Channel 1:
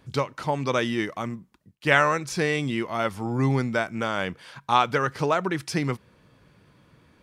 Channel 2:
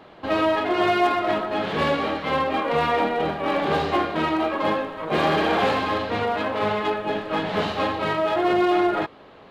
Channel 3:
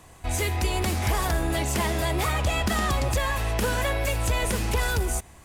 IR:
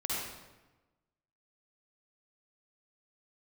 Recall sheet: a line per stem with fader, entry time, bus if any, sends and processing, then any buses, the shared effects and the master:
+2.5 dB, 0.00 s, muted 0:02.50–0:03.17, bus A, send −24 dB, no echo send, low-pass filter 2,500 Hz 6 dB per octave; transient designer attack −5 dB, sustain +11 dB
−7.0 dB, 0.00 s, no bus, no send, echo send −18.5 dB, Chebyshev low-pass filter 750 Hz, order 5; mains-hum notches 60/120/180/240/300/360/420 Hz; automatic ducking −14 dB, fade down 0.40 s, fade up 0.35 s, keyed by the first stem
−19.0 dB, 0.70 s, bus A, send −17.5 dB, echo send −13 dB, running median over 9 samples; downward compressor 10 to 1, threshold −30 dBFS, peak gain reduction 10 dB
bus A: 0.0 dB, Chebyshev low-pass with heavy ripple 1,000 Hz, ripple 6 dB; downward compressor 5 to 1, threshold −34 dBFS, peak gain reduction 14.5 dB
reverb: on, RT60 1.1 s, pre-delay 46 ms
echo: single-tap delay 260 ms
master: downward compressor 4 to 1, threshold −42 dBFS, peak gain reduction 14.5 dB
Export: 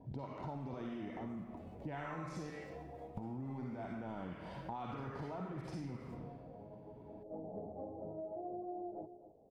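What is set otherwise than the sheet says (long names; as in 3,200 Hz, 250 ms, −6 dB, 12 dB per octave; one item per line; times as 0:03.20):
stem 2 −7.0 dB → −15.0 dB
stem 3: send −17.5 dB → −23.5 dB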